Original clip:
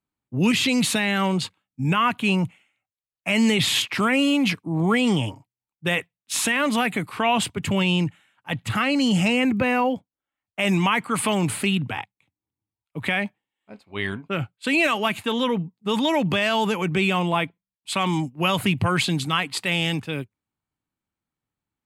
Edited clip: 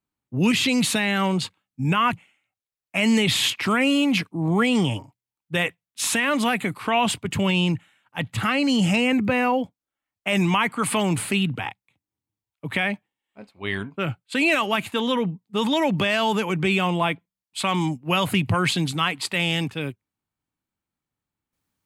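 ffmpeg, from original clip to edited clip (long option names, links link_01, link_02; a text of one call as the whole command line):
ffmpeg -i in.wav -filter_complex "[0:a]asplit=2[link_01][link_02];[link_01]atrim=end=2.132[link_03];[link_02]atrim=start=2.448[link_04];[link_03][link_04]acrossfade=duration=0.004:curve1=hsin:curve2=hsin" out.wav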